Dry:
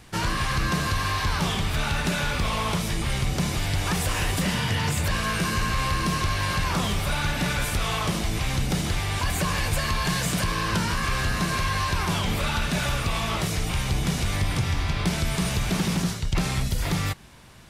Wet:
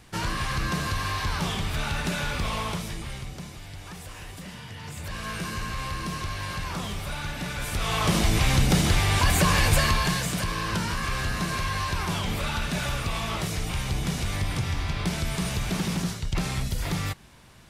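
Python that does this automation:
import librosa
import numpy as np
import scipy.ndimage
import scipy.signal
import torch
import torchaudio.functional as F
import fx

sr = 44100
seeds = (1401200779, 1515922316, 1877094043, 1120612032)

y = fx.gain(x, sr, db=fx.line((2.58, -3.0), (3.57, -15.5), (4.75, -15.5), (5.3, -7.0), (7.53, -7.0), (8.18, 4.5), (9.81, 4.5), (10.28, -3.0)))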